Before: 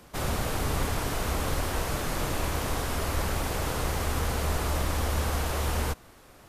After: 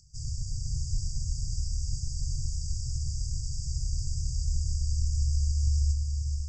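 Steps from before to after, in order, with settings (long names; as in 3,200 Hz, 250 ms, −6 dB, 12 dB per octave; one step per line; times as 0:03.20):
Chebyshev low-pass filter 7,900 Hz, order 8
upward compression, threshold −47 dBFS
linear-phase brick-wall band-stop 150–4,600 Hz
feedback delay with all-pass diffusion 538 ms, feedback 42%, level −4 dB
on a send at −6.5 dB: convolution reverb RT60 0.30 s, pre-delay 87 ms
on the sum: level −1 dB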